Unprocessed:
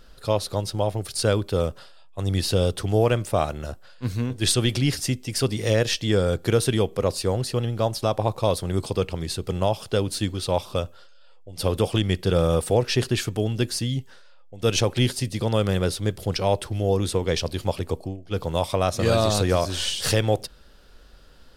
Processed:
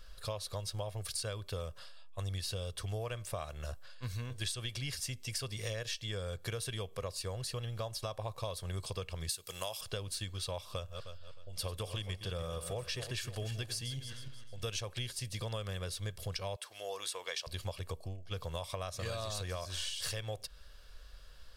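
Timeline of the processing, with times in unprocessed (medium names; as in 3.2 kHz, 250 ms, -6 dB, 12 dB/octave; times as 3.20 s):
9.29–9.81 s: RIAA curve recording
10.72–14.72 s: backward echo that repeats 155 ms, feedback 49%, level -11 dB
16.56–17.47 s: high-pass 670 Hz
whole clip: peaking EQ 290 Hz -12 dB 2.5 oct; comb 1.8 ms, depth 35%; compression 6:1, threshold -33 dBFS; trim -3 dB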